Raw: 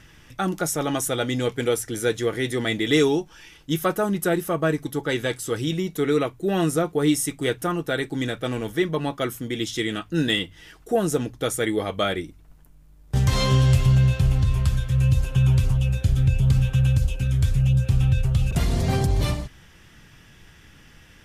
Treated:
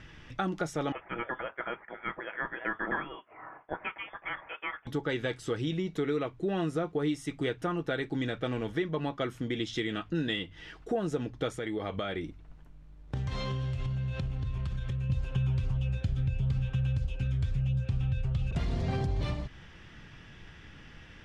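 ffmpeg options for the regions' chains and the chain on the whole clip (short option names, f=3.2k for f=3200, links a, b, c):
-filter_complex "[0:a]asettb=1/sr,asplit=3[a][b][c];[a]atrim=end=0.924[d];[b]atrim=start=0.92:end=4.87,asetpts=PTS-STARTPTS,afade=t=in:d=0.004:c=qsin,afade=t=out:st=3.946:d=0.004:c=qsin,highpass=f=2.7k:t=q:w=1.8,lowpass=f=3.1k:t=q:w=0.5098,lowpass=f=3.1k:t=q:w=0.6013,lowpass=f=3.1k:t=q:w=0.9,lowpass=f=3.1k:t=q:w=2.563,afreqshift=-3700[e];[c]atrim=start=4.866[f];[d][e]acrossfade=d=0.004:c1=hsin:c2=qsin[g];[g][f]acrossfade=d=0.004:c1=qsin:c2=hsin,asettb=1/sr,asplit=3[h][i][j];[h]atrim=end=11.564[k];[i]atrim=start=11.56:end=15.1,asetpts=PTS-STARTPTS,afade=t=in:d=0.004:c=qsin,afade=t=out:st=3.536:d=0.004:c=qsin,bandreject=f=4.9k:w=23,acompressor=threshold=-28dB:ratio=5:attack=3.2:release=140:knee=1:detection=peak[l];[j]atrim=start=15.096[m];[k][l]acrossfade=d=0.004:c1=hsin:c2=qsin[n];[n][m]acrossfade=d=0.004:c1=qsin:c2=hsin,acompressor=threshold=-30dB:ratio=3,lowpass=3.9k"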